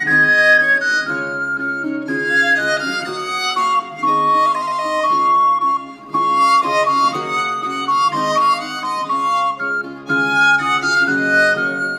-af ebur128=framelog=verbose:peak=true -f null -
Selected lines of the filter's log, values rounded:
Integrated loudness:
  I:         -15.6 LUFS
  Threshold: -25.6 LUFS
Loudness range:
  LRA:         2.4 LU
  Threshold: -36.2 LUFS
  LRA low:   -17.5 LUFS
  LRA high:  -15.2 LUFS
True peak:
  Peak:       -2.4 dBFS